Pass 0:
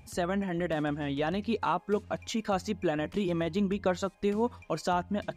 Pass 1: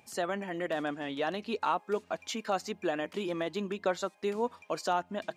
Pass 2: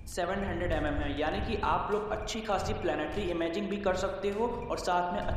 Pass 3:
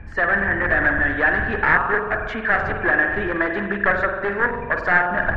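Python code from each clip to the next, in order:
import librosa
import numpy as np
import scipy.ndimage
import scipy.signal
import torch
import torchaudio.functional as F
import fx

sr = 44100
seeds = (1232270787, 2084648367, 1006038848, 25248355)

y1 = scipy.signal.sosfilt(scipy.signal.bessel(2, 370.0, 'highpass', norm='mag', fs=sr, output='sos'), x)
y2 = fx.dmg_wind(y1, sr, seeds[0], corner_hz=89.0, level_db=-41.0)
y2 = fx.rev_spring(y2, sr, rt60_s=1.5, pass_ms=(45,), chirp_ms=45, drr_db=4.0)
y3 = np.minimum(y2, 2.0 * 10.0 ** (-28.0 / 20.0) - y2)
y3 = fx.lowpass_res(y3, sr, hz=1700.0, q=11.0)
y3 = y3 * librosa.db_to_amplitude(7.5)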